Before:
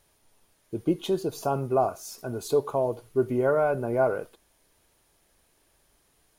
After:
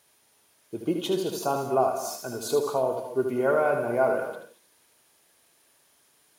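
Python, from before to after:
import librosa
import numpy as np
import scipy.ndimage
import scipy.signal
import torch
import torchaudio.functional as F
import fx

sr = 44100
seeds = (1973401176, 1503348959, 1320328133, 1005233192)

y = scipy.signal.sosfilt(scipy.signal.butter(2, 130.0, 'highpass', fs=sr, output='sos'), x)
y = fx.tilt_shelf(y, sr, db=-3.5, hz=700.0)
y = y + 10.0 ** (-6.5 / 20.0) * np.pad(y, (int(76 * sr / 1000.0), 0))[:len(y)]
y = fx.rev_gated(y, sr, seeds[0], gate_ms=250, shape='rising', drr_db=9.0)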